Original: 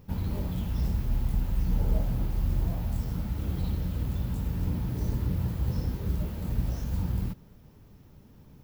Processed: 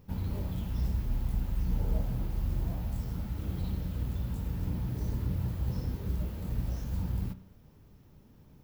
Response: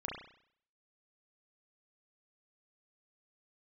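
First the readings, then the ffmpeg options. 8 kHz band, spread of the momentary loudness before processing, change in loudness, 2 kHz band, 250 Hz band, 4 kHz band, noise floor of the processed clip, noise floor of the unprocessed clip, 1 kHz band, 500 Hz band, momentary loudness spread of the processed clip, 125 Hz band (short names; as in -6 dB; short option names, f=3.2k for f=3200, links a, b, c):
-4.0 dB, 3 LU, -3.5 dB, -4.0 dB, -4.0 dB, -4.0 dB, -57 dBFS, -54 dBFS, -4.0 dB, -4.0 dB, 3 LU, -3.5 dB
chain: -filter_complex "[0:a]asplit=2[a][b];[1:a]atrim=start_sample=2205[c];[b][c]afir=irnorm=-1:irlink=0,volume=-11dB[d];[a][d]amix=inputs=2:normalize=0,volume=-5.5dB"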